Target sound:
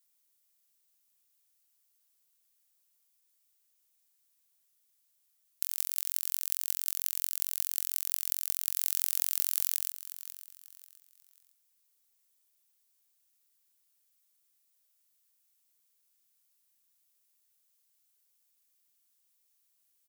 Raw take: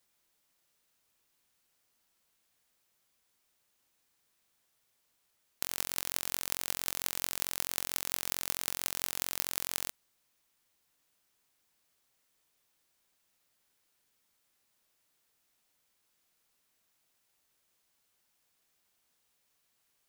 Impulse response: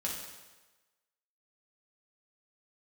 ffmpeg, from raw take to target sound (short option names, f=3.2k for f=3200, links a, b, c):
-filter_complex "[0:a]asettb=1/sr,asplit=3[a][b][c];[a]atrim=end=8.764[d];[b]atrim=start=8.76:end=9.75,asetpts=PTS-STARTPTS,afade=t=in:d=0.004:c=qsin,afade=t=out:st=0.986:d=0.004:c=qsin,aeval=exprs='0.841*sin(PI/2*3.16*val(0)/0.841)':c=same[e];[c]atrim=start=9.746[f];[d][e]acrossfade=d=0.004:c1=hsin:c2=qsin[g];[g][f]acrossfade=d=0.004:c1=qsin:c2=hsin,aecho=1:1:540|1080|1620:0.2|0.0638|0.0204,crystalizer=i=4.5:c=0,volume=-14.5dB"